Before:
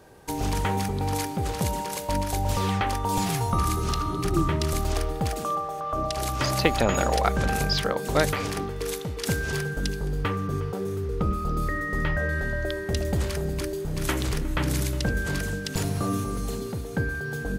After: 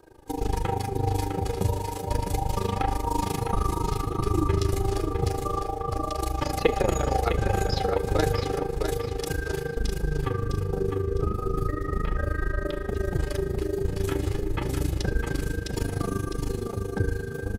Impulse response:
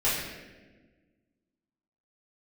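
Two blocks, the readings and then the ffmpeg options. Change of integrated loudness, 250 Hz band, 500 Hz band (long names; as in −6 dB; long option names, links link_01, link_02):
−1.0 dB, −2.0 dB, +1.5 dB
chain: -filter_complex "[0:a]aecho=1:1:2.4:0.51,acrossover=split=760|1300[link_01][link_02][link_03];[link_01]acontrast=75[link_04];[link_04][link_02][link_03]amix=inputs=3:normalize=0,tremolo=f=26:d=0.947,flanger=delay=3.1:depth=7.4:regen=40:speed=0.32:shape=sinusoidal,aecho=1:1:656|1312|1968|2624:0.501|0.155|0.0482|0.0149,asplit=2[link_05][link_06];[1:a]atrim=start_sample=2205,adelay=37[link_07];[link_06][link_07]afir=irnorm=-1:irlink=0,volume=-26.5dB[link_08];[link_05][link_08]amix=inputs=2:normalize=0"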